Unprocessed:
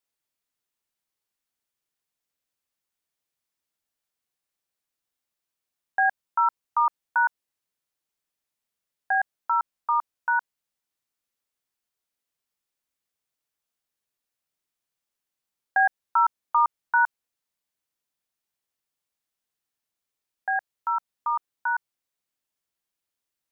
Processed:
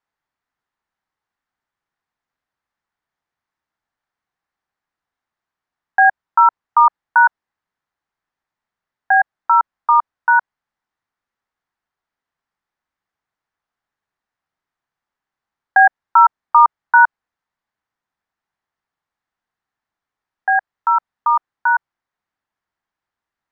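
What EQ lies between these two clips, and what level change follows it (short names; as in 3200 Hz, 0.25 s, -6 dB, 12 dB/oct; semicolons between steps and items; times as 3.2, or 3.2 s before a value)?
air absorption 120 m; low shelf 440 Hz +6.5 dB; band shelf 1200 Hz +9.5 dB; +1.0 dB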